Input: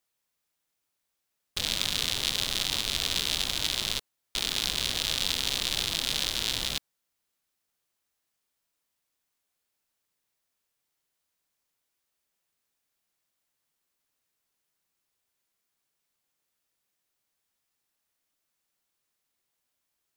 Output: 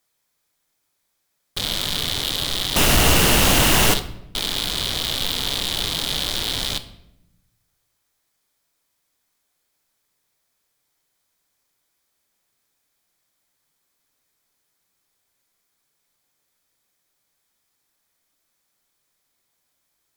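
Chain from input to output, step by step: band-stop 2.8 kHz, Q 10; 2.76–3.94 s: waveshaping leveller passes 5; sine folder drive 9 dB, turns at -7 dBFS; simulated room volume 260 m³, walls mixed, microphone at 0.32 m; trim -4.5 dB

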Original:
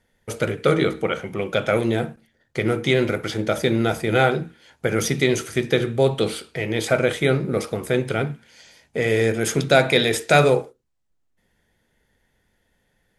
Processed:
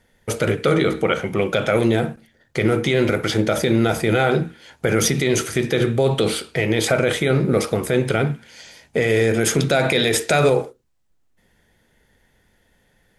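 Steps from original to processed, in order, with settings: loudness maximiser +13 dB; trim -6.5 dB

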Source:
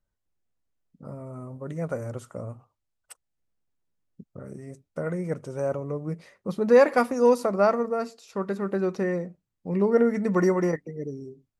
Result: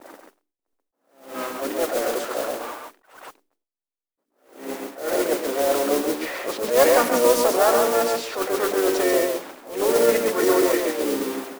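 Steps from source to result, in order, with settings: jump at every zero crossing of -33.5 dBFS; elliptic high-pass 280 Hz, stop band 50 dB; hum notches 50/100/150/200/250/300/350/400/450 Hz; gate with hold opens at -45 dBFS; in parallel at 0 dB: compressor with a negative ratio -28 dBFS, ratio -0.5; on the sum: level-controlled noise filter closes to 860 Hz, open at -19.5 dBFS; modulation noise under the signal 11 dB; on a send: delay 135 ms -4.5 dB; on the sum: harmony voices -5 st -13 dB, +4 st -7 dB; attacks held to a fixed rise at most 120 dB/s

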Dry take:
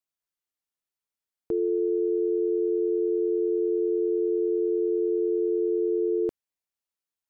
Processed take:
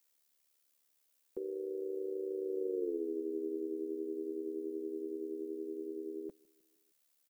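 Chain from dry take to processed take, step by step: Doppler pass-by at 2.87 s, 31 m/s, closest 5.6 m; comb 5.1 ms, depth 83%; compression, threshold -42 dBFS, peak gain reduction 20 dB; added noise blue -75 dBFS; small resonant body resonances 290/490 Hz, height 12 dB, ringing for 35 ms; AM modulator 72 Hz, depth 50%; on a send: feedback delay 155 ms, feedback 55%, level -24 dB; on the sum: trim +3 dB

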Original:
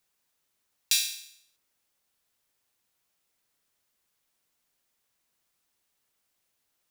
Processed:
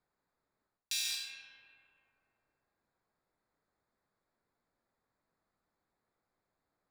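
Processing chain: local Wiener filter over 15 samples; treble shelf 9.1 kHz -7.5 dB; algorithmic reverb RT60 3.7 s, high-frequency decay 0.3×, pre-delay 95 ms, DRR 8 dB; reverse; compression 10:1, threshold -35 dBFS, peak gain reduction 14.5 dB; reverse; trim +2.5 dB

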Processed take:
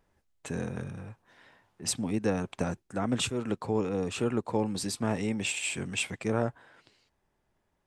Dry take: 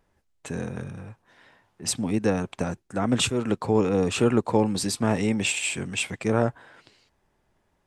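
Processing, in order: gain riding within 3 dB 0.5 s; trim -5.5 dB

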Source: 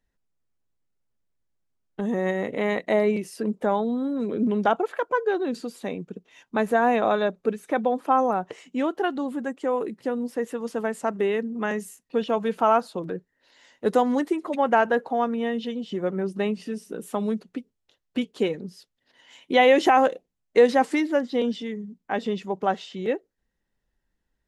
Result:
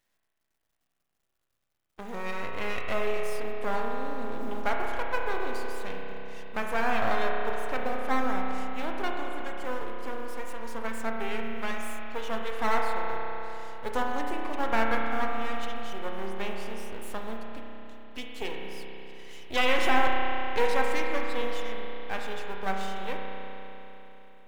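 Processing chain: companding laws mixed up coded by mu; high-pass 930 Hz 6 dB/octave; half-wave rectifier; spring tank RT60 3.7 s, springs 31 ms, chirp 80 ms, DRR -0.5 dB; trim -1.5 dB

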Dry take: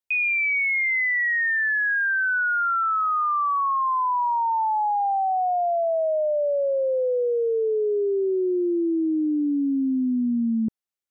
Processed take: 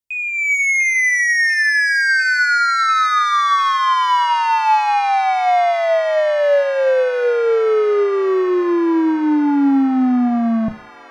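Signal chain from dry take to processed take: tone controls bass +10 dB, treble +4 dB; level rider gain up to 14 dB; saturation -11.5 dBFS, distortion -13 dB; feedback echo behind a high-pass 697 ms, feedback 78%, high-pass 1.5 kHz, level -11 dB; simulated room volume 120 m³, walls furnished, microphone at 0.31 m; trim -2.5 dB

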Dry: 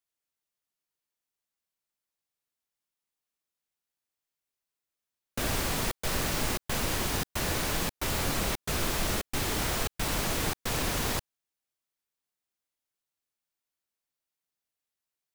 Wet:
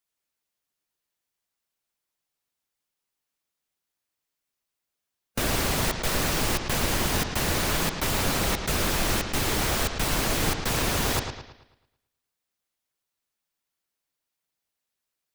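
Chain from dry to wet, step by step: harmonic-percussive split harmonic -5 dB; bucket-brigade echo 110 ms, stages 4096, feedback 43%, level -7 dB; trim +6 dB

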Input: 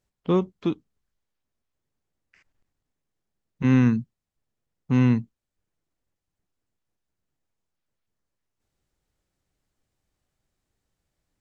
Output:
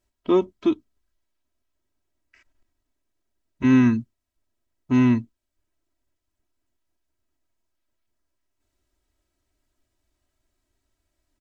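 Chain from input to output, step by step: comb 3.1 ms, depth 94%

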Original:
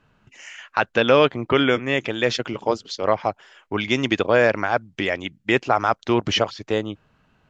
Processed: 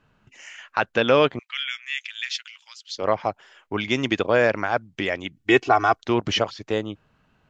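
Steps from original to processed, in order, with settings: 1.39–2.96 s: inverse Chebyshev high-pass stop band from 340 Hz, stop band 80 dB; 5.36–6.02 s: comb 2.7 ms, depth 98%; trim -2 dB

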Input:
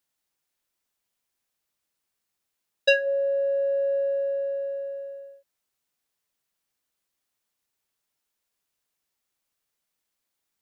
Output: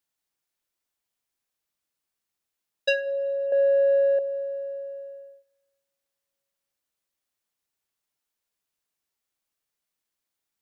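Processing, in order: 3.52–4.19 s: ten-band graphic EQ 500 Hz +4 dB, 1 kHz +12 dB, 2 kHz +11 dB, 4 kHz +8 dB; reverberation, pre-delay 3 ms, DRR 18 dB; trim -3.5 dB

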